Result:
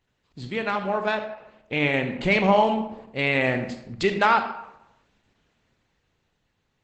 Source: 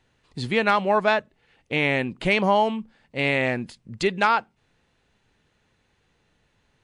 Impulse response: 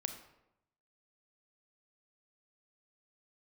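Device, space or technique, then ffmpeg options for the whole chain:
speakerphone in a meeting room: -filter_complex "[1:a]atrim=start_sample=2205[a];[0:a][a]afir=irnorm=-1:irlink=0,dynaudnorm=f=240:g=13:m=15.5dB,volume=-5.5dB" -ar 48000 -c:a libopus -b:a 12k

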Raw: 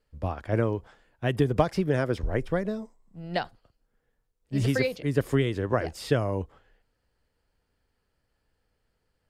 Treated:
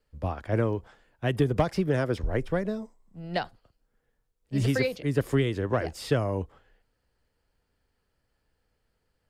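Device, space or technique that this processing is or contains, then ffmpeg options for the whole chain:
one-band saturation: -filter_complex "[0:a]acrossover=split=270|3300[a][b][c];[b]asoftclip=type=tanh:threshold=-15.5dB[d];[a][d][c]amix=inputs=3:normalize=0"

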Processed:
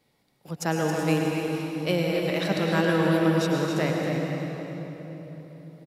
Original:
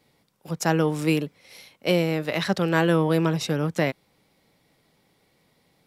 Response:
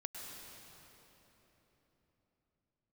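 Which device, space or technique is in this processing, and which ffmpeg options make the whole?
cave: -filter_complex "[0:a]aecho=1:1:272:0.398[a];[1:a]atrim=start_sample=2205[b];[a][b]afir=irnorm=-1:irlink=0"

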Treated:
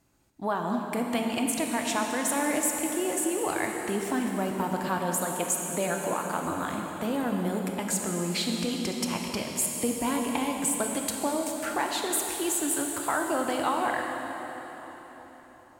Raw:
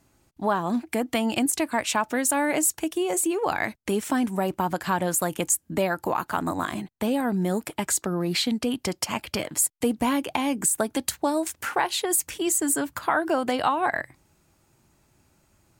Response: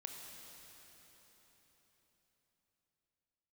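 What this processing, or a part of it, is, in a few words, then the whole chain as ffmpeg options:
cathedral: -filter_complex "[1:a]atrim=start_sample=2205[a];[0:a][a]afir=irnorm=-1:irlink=0,asettb=1/sr,asplit=3[b][c][d];[b]atrim=end=4.984[e];[c]atrim=start=4.98:end=6.46,asetpts=PTS-STARTPTS,afade=t=in:d=0.004:c=qsin,afade=t=out:st=1.476:d=0.004:c=qsin,highpass=140[f];[d]atrim=start=6.456[g];[e][f]acrossfade=d=0.004:c1=hsin:c2=qsin[h];[h][g]acrossfade=d=0.004:c1=qsin:c2=hsin"

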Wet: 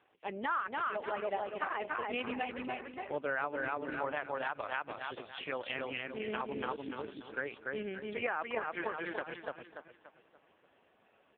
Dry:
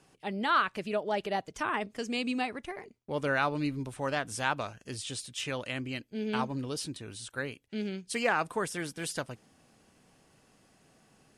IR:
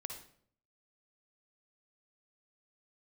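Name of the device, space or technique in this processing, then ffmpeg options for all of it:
voicemail: -filter_complex "[0:a]asplit=3[a][b][c];[a]afade=t=out:st=1.22:d=0.02[d];[b]bandreject=f=124.6:t=h:w=4,bandreject=f=249.2:t=h:w=4,bandreject=f=373.8:t=h:w=4,bandreject=f=498.4:t=h:w=4,bandreject=f=623:t=h:w=4,bandreject=f=747.6:t=h:w=4,bandreject=f=872.2:t=h:w=4,afade=t=in:st=1.22:d=0.02,afade=t=out:st=1.97:d=0.02[e];[c]afade=t=in:st=1.97:d=0.02[f];[d][e][f]amix=inputs=3:normalize=0,asplit=3[g][h][i];[g]afade=t=out:st=4.15:d=0.02[j];[h]asubboost=boost=8.5:cutoff=73,afade=t=in:st=4.15:d=0.02,afade=t=out:st=4.82:d=0.02[k];[i]afade=t=in:st=4.82:d=0.02[l];[j][k][l]amix=inputs=3:normalize=0,highpass=370,lowpass=3k,aecho=1:1:289|578|867|1156|1445:0.708|0.269|0.102|0.0388|0.0148,acompressor=threshold=-31dB:ratio=10,volume=1.5dB" -ar 8000 -c:a libopencore_amrnb -b:a 4750

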